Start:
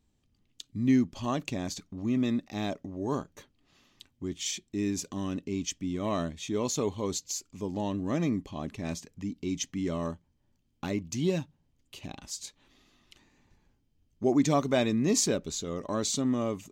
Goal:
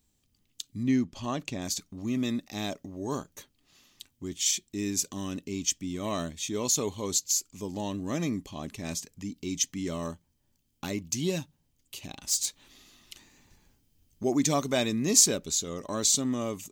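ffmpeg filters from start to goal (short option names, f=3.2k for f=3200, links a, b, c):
-filter_complex "[0:a]asettb=1/sr,asplit=3[a][b][c];[a]atrim=end=12.274[d];[b]atrim=start=12.27:end=14.23,asetpts=PTS-STARTPTS,afade=t=in:d=0.004:c=qsin,afade=t=out:st=1.956:d=0.004:c=qsin,aeval=exprs='0.0708*(cos(1*acos(clip(val(0)/0.0708,-1,1)))-cos(1*PI/2))+0.0112*(cos(5*acos(clip(val(0)/0.0708,-1,1)))-cos(5*PI/2))':c=same[e];[c]atrim=start=14.226[f];[d][e]acrossfade=d=0.004:c1=hsin:c2=qsin[g];[g][f]acrossfade=d=0.004:c1=qsin:c2=hsin,crystalizer=i=3:c=0,asettb=1/sr,asplit=3[h][i][j];[h]atrim=end=0.834[k];[i]atrim=start=0.83:end=1.62,asetpts=PTS-STARTPTS,afade=t=in:d=0.004:c=qsin,afade=t=out:st=0.786:d=0.004:c=qsin,aemphasis=mode=reproduction:type=50kf[l];[j]atrim=start=1.616[m];[k][l]acrossfade=d=0.004:c1=hsin:c2=qsin[n];[n][m]acrossfade=d=0.004:c1=qsin:c2=hsin,volume=-2dB"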